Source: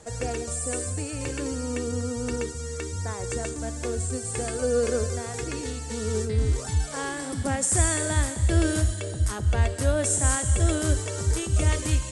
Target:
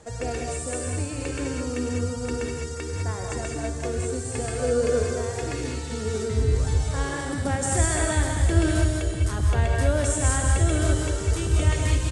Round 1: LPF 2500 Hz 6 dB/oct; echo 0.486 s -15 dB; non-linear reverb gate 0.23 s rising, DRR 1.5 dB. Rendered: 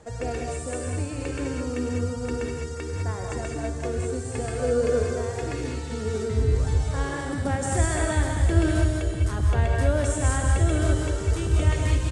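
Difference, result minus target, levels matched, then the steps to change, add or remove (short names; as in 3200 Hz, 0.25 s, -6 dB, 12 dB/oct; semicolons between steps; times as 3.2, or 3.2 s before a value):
4000 Hz band -3.0 dB
change: LPF 5300 Hz 6 dB/oct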